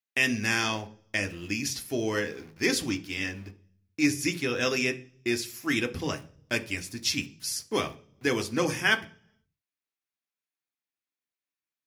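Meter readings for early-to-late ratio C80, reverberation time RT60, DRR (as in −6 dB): 22.5 dB, 0.50 s, 7.5 dB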